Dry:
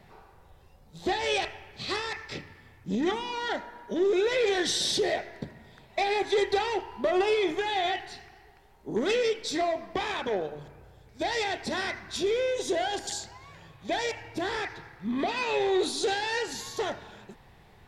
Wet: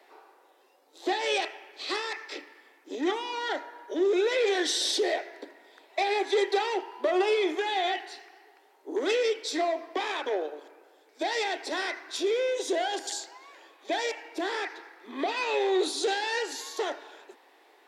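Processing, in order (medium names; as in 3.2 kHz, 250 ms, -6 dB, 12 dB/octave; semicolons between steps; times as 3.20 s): steep high-pass 280 Hz 72 dB/octave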